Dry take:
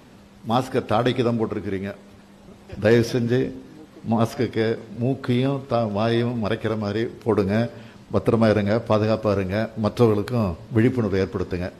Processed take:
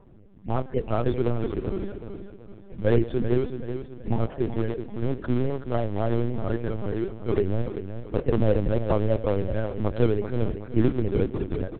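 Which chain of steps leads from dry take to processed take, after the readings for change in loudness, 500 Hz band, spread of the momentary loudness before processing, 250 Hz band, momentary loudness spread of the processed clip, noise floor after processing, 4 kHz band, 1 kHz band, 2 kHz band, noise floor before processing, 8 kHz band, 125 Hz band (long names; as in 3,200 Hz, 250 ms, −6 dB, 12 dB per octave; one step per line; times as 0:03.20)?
−4.5 dB, −4.5 dB, 9 LU, −5.0 dB, 10 LU, −45 dBFS, −13.0 dB, −8.0 dB, −10.5 dB, −48 dBFS, can't be measured, −2.5 dB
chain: gate on every frequency bin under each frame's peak −15 dB strong
in parallel at −11 dB: sample-and-hold swept by an LFO 34×, swing 100% 3.6 Hz
on the sum: notch comb filter 150 Hz
repeating echo 379 ms, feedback 40%, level −9 dB
linear-prediction vocoder at 8 kHz pitch kept
level −3.5 dB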